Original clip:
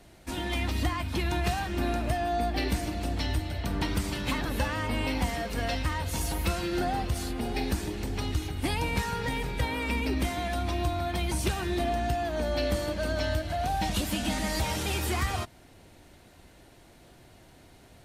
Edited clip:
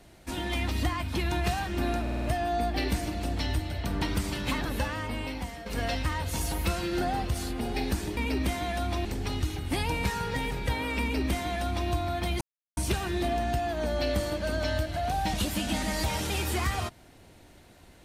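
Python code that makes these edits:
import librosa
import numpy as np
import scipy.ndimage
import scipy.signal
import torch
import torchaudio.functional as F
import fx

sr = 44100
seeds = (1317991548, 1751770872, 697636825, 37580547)

y = fx.edit(x, sr, fx.stutter(start_s=2.02, slice_s=0.05, count=5),
    fx.fade_out_to(start_s=4.42, length_s=1.04, floor_db=-11.0),
    fx.duplicate(start_s=9.93, length_s=0.88, to_s=7.97),
    fx.insert_silence(at_s=11.33, length_s=0.36), tone=tone)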